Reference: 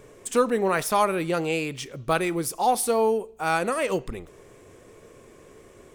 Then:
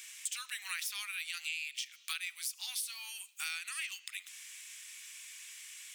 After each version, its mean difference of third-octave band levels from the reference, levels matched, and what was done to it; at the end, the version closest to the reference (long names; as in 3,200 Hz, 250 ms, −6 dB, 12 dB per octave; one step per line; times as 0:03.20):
20.0 dB: inverse Chebyshev high-pass filter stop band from 530 Hz, stop band 70 dB
dynamic equaliser 9,700 Hz, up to −6 dB, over −46 dBFS, Q 0.93
downward compressor 6 to 1, threshold −50 dBFS, peak gain reduction 19 dB
level +13 dB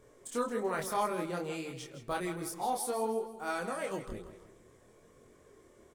3.5 dB: parametric band 2,600 Hz −7.5 dB 0.27 octaves
on a send: repeating echo 162 ms, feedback 40%, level −11.5 dB
on the sum: multi-voice chorus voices 2, 0.57 Hz, delay 25 ms, depth 3.6 ms
level −7.5 dB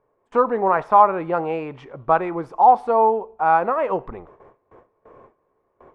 11.0 dB: low-pass filter 1,600 Hz 12 dB per octave
parametric band 900 Hz +15 dB 1.3 octaves
noise gate with hold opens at −34 dBFS
level −3 dB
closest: second